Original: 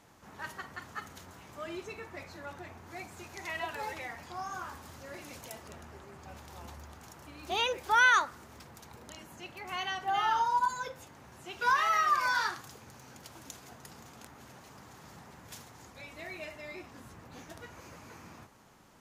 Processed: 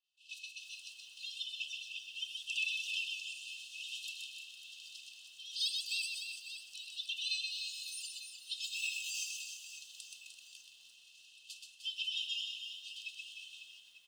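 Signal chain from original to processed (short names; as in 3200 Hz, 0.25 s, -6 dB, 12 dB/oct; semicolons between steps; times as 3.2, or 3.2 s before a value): low-pass opened by the level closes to 2600 Hz, open at -25.5 dBFS; expander -45 dBFS; comb 2.6 ms, depth 46%; compressor 3:1, threshold -45 dBFS, peak gain reduction 20 dB; brick-wall FIR high-pass 1900 Hz; reverse bouncing-ball echo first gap 0.17 s, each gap 1.4×, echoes 5; speed mistake 33 rpm record played at 45 rpm; lo-fi delay 0.338 s, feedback 35%, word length 12-bit, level -12.5 dB; gain +11.5 dB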